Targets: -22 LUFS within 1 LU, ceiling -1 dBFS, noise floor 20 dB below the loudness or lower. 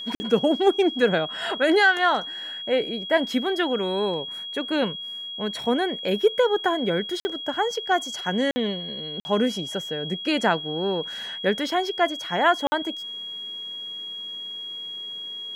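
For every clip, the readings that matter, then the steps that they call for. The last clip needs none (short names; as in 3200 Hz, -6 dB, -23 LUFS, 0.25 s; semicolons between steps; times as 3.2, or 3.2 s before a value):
dropouts 5; longest dropout 50 ms; steady tone 3300 Hz; tone level -32 dBFS; loudness -24.5 LUFS; peak -7.0 dBFS; loudness target -22.0 LUFS
-> interpolate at 0.15/7.2/8.51/9.2/12.67, 50 ms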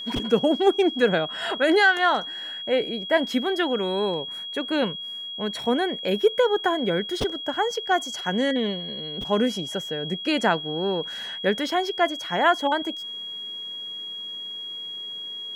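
dropouts 0; steady tone 3300 Hz; tone level -32 dBFS
-> notch 3300 Hz, Q 30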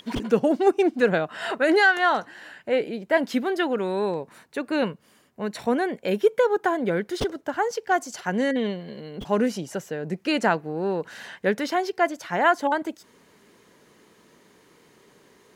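steady tone none; loudness -24.5 LUFS; peak -7.5 dBFS; loudness target -22.0 LUFS
-> gain +2.5 dB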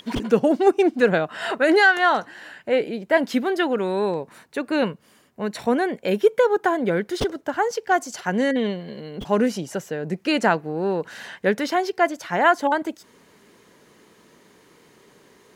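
loudness -22.0 LUFS; peak -5.0 dBFS; noise floor -55 dBFS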